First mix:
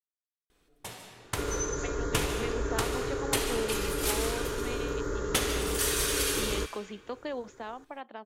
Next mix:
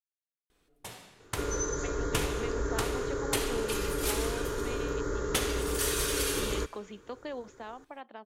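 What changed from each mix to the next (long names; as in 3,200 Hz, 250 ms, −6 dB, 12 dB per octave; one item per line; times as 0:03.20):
speech −3.0 dB
first sound: send −11.0 dB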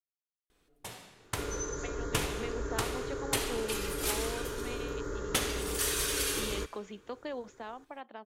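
second sound −4.5 dB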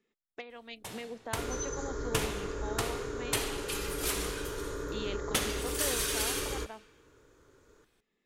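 speech: entry −1.45 s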